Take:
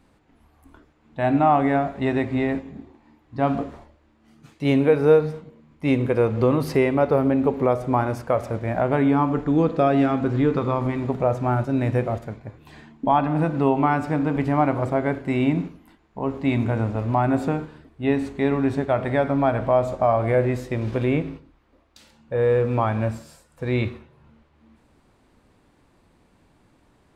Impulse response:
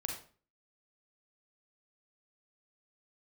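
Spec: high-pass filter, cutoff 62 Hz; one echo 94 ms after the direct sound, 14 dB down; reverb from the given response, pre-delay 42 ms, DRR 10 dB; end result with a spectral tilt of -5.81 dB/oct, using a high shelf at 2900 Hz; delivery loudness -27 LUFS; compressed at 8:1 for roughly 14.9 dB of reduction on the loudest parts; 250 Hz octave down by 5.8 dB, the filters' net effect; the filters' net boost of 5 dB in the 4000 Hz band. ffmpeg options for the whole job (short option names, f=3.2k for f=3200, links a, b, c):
-filter_complex "[0:a]highpass=62,equalizer=f=250:t=o:g=-7,highshelf=f=2.9k:g=4.5,equalizer=f=4k:t=o:g=3,acompressor=threshold=-29dB:ratio=8,aecho=1:1:94:0.2,asplit=2[a][b];[1:a]atrim=start_sample=2205,adelay=42[c];[b][c]afir=irnorm=-1:irlink=0,volume=-11dB[d];[a][d]amix=inputs=2:normalize=0,volume=6.5dB"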